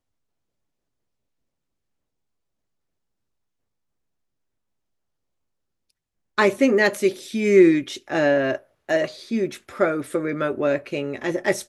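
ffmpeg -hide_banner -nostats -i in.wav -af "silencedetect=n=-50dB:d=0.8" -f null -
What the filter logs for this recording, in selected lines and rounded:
silence_start: 0.00
silence_end: 5.90 | silence_duration: 5.90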